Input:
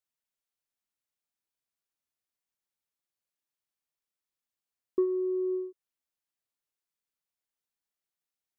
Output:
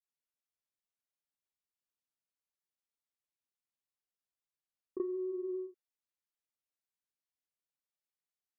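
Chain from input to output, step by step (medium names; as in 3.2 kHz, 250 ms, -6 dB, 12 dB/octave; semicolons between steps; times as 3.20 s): granulator 100 ms, grains 20 per s, spray 28 ms, pitch spread up and down by 0 st; trim -6.5 dB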